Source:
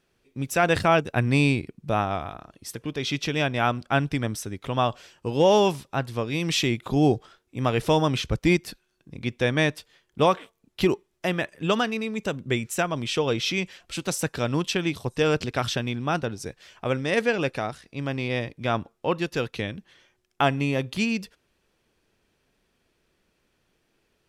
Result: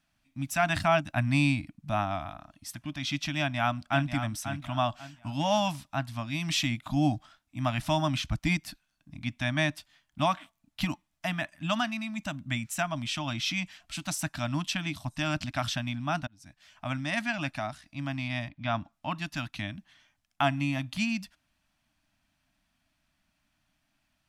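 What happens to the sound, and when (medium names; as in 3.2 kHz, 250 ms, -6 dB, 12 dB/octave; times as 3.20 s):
3.38–4.10 s: echo throw 540 ms, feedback 30%, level -9 dB
16.27–16.88 s: fade in
18.48–18.91 s: low-pass 3.4 kHz -> 8.4 kHz 24 dB/octave
whole clip: elliptic band-stop 300–620 Hz; trim -3.5 dB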